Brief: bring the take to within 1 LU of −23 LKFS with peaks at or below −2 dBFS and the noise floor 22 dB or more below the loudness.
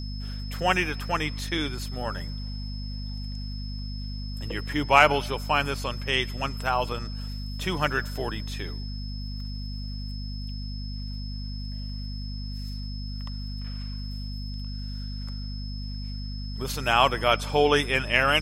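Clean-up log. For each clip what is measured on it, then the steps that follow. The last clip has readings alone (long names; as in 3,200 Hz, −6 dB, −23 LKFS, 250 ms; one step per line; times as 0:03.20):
mains hum 50 Hz; hum harmonics up to 250 Hz; level of the hum −31 dBFS; interfering tone 5,200 Hz; level of the tone −42 dBFS; integrated loudness −28.5 LKFS; sample peak −3.0 dBFS; target loudness −23.0 LKFS
→ hum removal 50 Hz, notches 5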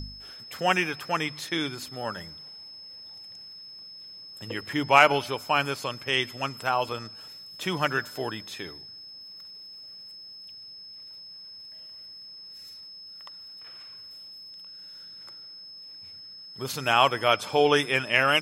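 mains hum none found; interfering tone 5,200 Hz; level of the tone −42 dBFS
→ notch filter 5,200 Hz, Q 30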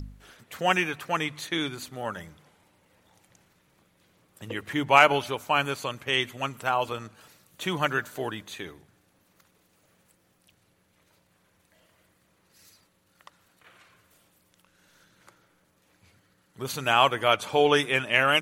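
interfering tone none found; integrated loudness −25.5 LKFS; sample peak −3.0 dBFS; target loudness −23.0 LKFS
→ level +2.5 dB
brickwall limiter −2 dBFS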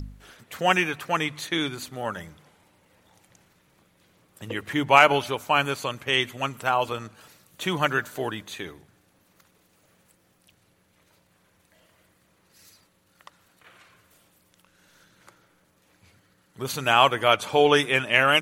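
integrated loudness −23.0 LKFS; sample peak −2.0 dBFS; background noise floor −65 dBFS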